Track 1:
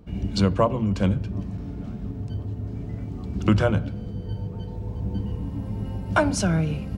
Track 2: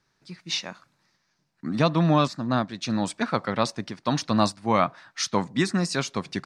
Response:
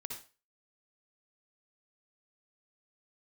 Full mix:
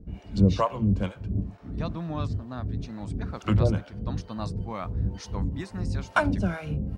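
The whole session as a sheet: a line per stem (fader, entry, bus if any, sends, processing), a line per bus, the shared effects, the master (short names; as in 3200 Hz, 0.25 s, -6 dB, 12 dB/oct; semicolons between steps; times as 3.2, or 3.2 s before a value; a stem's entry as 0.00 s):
+0.5 dB, 0.00 s, no send, harmonic tremolo 2.2 Hz, depth 100%, crossover 590 Hz
-13.5 dB, 0.00 s, no send, dry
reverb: off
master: low shelf 62 Hz +7.5 dB; mismatched tape noise reduction decoder only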